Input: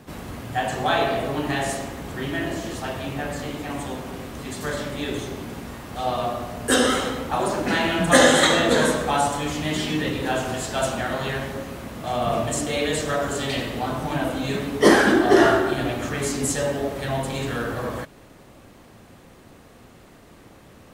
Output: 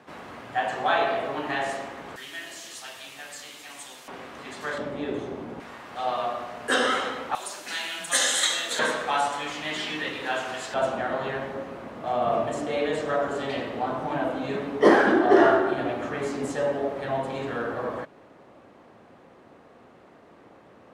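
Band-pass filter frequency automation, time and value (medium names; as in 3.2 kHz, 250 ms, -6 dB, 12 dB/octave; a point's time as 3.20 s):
band-pass filter, Q 0.58
1.2 kHz
from 2.16 s 6.3 kHz
from 4.08 s 1.4 kHz
from 4.78 s 540 Hz
from 5.60 s 1.4 kHz
from 7.35 s 7.2 kHz
from 8.79 s 1.8 kHz
from 10.74 s 700 Hz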